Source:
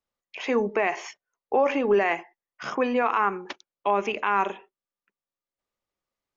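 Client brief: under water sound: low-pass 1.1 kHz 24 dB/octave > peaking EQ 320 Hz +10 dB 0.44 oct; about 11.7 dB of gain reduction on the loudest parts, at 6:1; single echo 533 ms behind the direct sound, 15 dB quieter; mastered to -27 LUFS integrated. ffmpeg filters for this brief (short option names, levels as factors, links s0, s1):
-af "acompressor=threshold=0.0316:ratio=6,lowpass=f=1100:w=0.5412,lowpass=f=1100:w=1.3066,equalizer=f=320:t=o:w=0.44:g=10,aecho=1:1:533:0.178,volume=2.37"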